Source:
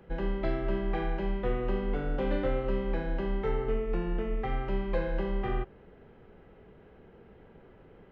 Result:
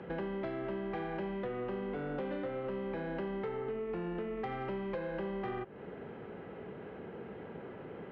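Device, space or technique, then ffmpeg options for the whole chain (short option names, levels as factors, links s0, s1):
AM radio: -af "highpass=140,lowpass=3300,acompressor=threshold=0.00631:ratio=8,asoftclip=type=tanh:threshold=0.0106,volume=3.16"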